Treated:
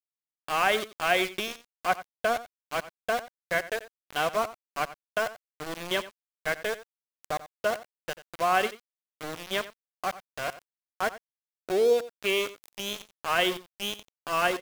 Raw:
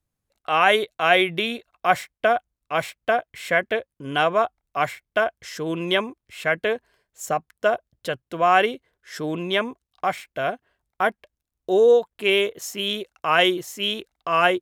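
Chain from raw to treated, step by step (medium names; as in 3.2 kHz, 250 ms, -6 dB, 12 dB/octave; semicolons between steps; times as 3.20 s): small samples zeroed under -22.5 dBFS; on a send: delay 89 ms -16 dB; on the sum: trim -7 dB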